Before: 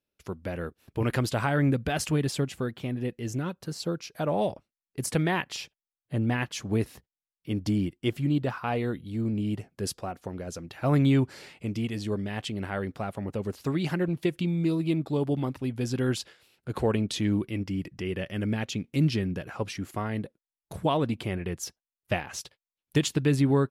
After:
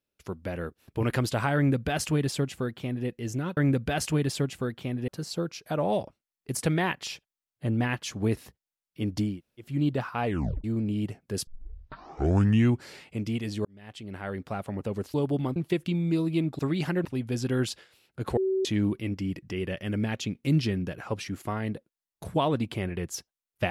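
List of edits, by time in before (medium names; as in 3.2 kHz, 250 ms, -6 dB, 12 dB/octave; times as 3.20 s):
1.56–3.07 s: copy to 3.57 s
7.80–8.18 s: room tone, crossfade 0.24 s
8.75 s: tape stop 0.38 s
9.96 s: tape start 1.35 s
12.14–13.06 s: fade in
13.63–14.09 s: swap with 15.12–15.54 s
16.86–17.14 s: bleep 381 Hz -23 dBFS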